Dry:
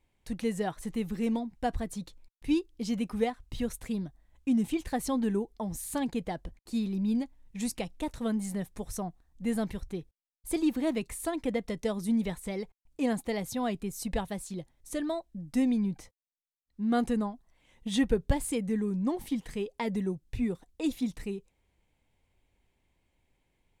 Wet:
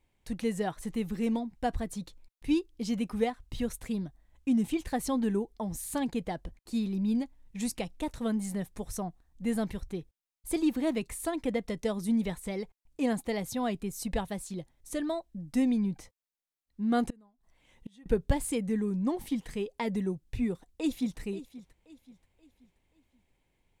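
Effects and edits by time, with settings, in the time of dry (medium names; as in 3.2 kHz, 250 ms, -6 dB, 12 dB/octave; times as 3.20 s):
17.10–18.06 s: inverted gate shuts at -29 dBFS, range -29 dB
20.51–21.19 s: echo throw 530 ms, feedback 40%, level -16 dB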